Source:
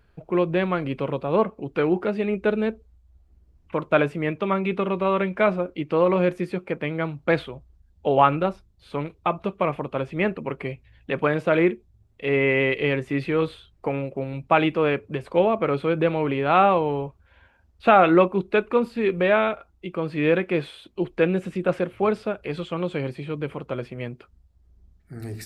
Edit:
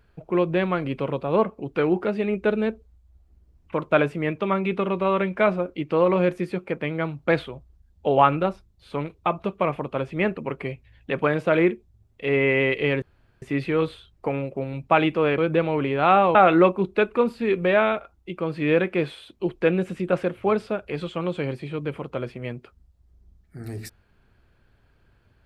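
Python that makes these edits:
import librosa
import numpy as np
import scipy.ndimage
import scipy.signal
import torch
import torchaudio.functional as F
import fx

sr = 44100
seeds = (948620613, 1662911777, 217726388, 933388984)

y = fx.edit(x, sr, fx.insert_room_tone(at_s=13.02, length_s=0.4),
    fx.cut(start_s=14.98, length_s=0.87),
    fx.cut(start_s=16.82, length_s=1.09), tone=tone)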